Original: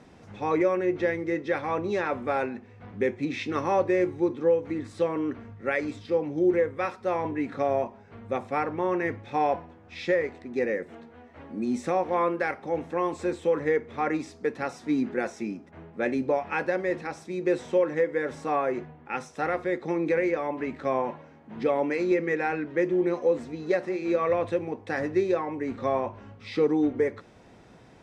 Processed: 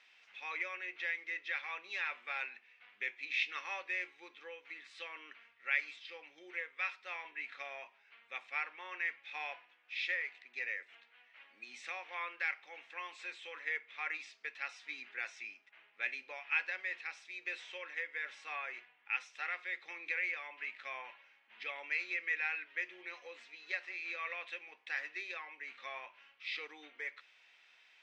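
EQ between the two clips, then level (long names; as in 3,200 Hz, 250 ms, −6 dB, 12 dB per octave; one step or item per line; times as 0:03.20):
four-pole ladder band-pass 3,100 Hz, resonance 45%
high-shelf EQ 4,000 Hz −7 dB
+11.5 dB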